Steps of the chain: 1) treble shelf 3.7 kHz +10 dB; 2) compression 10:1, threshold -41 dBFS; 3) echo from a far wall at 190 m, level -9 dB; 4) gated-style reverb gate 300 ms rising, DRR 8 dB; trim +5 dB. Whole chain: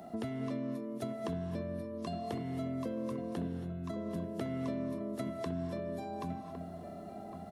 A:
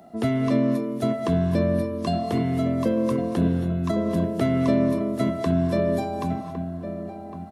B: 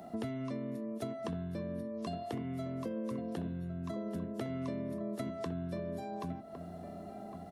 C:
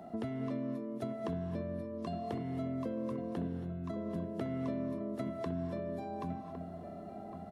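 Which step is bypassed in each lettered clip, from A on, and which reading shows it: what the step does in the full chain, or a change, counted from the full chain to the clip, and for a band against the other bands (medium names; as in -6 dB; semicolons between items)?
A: 2, mean gain reduction 12.0 dB; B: 4, echo-to-direct -6.5 dB to -12.5 dB; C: 1, 4 kHz band -4.5 dB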